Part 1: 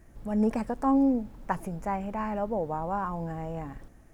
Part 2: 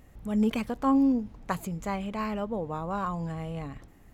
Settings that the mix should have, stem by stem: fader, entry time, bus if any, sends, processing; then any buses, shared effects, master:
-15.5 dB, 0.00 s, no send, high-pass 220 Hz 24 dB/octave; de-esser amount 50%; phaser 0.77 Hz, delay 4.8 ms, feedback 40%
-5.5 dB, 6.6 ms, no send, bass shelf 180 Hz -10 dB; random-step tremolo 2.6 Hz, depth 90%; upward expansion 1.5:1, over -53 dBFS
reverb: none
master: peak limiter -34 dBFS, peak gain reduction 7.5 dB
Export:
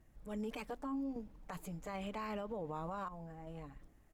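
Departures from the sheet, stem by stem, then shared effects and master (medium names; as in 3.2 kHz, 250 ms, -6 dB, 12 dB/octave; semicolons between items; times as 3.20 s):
stem 1: missing high-pass 220 Hz 24 dB/octave; stem 2 -5.5 dB -> +2.5 dB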